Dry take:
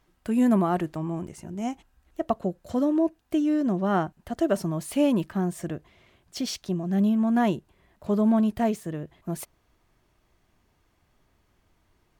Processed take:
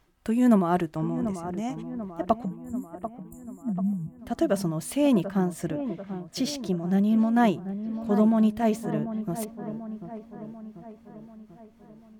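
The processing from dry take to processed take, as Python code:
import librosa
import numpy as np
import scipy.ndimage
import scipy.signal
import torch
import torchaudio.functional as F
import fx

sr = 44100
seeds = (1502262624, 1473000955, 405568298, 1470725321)

y = x * (1.0 - 0.42 / 2.0 + 0.42 / 2.0 * np.cos(2.0 * np.pi * 3.9 * (np.arange(len(x)) / sr)))
y = fx.brickwall_bandstop(y, sr, low_hz=250.0, high_hz=6800.0, at=(2.45, 4.19))
y = fx.echo_wet_lowpass(y, sr, ms=740, feedback_pct=55, hz=1500.0, wet_db=-10.5)
y = F.gain(torch.from_numpy(y), 2.5).numpy()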